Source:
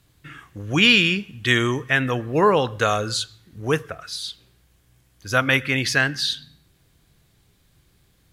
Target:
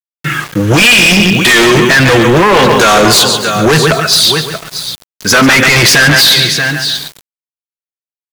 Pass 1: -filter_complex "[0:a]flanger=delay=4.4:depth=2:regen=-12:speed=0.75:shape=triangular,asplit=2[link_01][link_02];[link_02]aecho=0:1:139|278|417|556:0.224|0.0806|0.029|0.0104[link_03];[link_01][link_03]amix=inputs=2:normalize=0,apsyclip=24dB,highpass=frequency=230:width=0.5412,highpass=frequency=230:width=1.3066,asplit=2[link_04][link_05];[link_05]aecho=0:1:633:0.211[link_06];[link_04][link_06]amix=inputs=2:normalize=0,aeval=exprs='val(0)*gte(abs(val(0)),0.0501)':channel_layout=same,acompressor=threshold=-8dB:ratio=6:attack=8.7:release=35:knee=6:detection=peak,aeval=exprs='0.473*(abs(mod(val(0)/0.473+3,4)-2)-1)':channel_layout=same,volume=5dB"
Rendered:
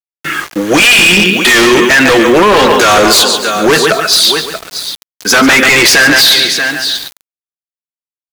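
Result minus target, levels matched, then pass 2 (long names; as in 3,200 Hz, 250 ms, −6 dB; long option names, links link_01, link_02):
125 Hz band −10.5 dB
-filter_complex "[0:a]flanger=delay=4.4:depth=2:regen=-12:speed=0.75:shape=triangular,asplit=2[link_01][link_02];[link_02]aecho=0:1:139|278|417|556:0.224|0.0806|0.029|0.0104[link_03];[link_01][link_03]amix=inputs=2:normalize=0,apsyclip=24dB,highpass=frequency=110:width=0.5412,highpass=frequency=110:width=1.3066,asplit=2[link_04][link_05];[link_05]aecho=0:1:633:0.211[link_06];[link_04][link_06]amix=inputs=2:normalize=0,aeval=exprs='val(0)*gte(abs(val(0)),0.0501)':channel_layout=same,acompressor=threshold=-8dB:ratio=6:attack=8.7:release=35:knee=6:detection=peak,aeval=exprs='0.473*(abs(mod(val(0)/0.473+3,4)-2)-1)':channel_layout=same,volume=5dB"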